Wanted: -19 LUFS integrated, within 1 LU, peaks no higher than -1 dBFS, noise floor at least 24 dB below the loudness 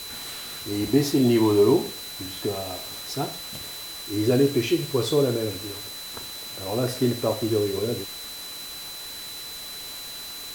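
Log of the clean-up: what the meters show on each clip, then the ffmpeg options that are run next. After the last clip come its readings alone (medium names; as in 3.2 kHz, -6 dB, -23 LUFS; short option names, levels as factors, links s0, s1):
steady tone 4 kHz; tone level -37 dBFS; noise floor -37 dBFS; noise floor target -50 dBFS; loudness -26.0 LUFS; peak level -7.5 dBFS; loudness target -19.0 LUFS
-> -af "bandreject=f=4000:w=30"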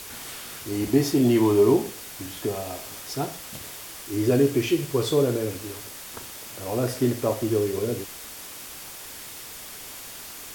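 steady tone not found; noise floor -40 dBFS; noise floor target -49 dBFS
-> -af "afftdn=nr=9:nf=-40"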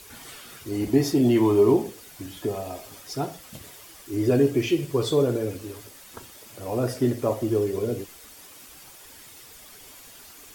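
noise floor -47 dBFS; noise floor target -48 dBFS
-> -af "afftdn=nr=6:nf=-47"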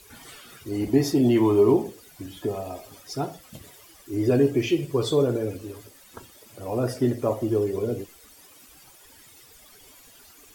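noise floor -52 dBFS; loudness -24.0 LUFS; peak level -7.5 dBFS; loudness target -19.0 LUFS
-> -af "volume=1.78"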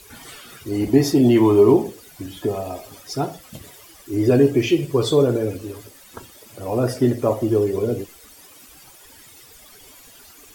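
loudness -19.0 LUFS; peak level -2.5 dBFS; noise floor -47 dBFS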